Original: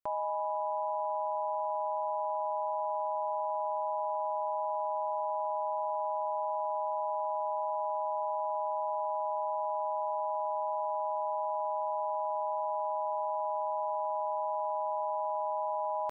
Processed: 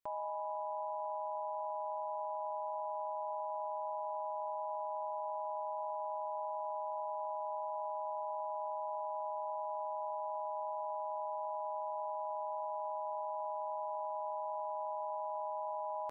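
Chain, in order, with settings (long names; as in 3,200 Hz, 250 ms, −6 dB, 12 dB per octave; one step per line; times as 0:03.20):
hum removal 383.8 Hz, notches 6
brickwall limiter −33.5 dBFS, peak gain reduction 8 dB
level +1 dB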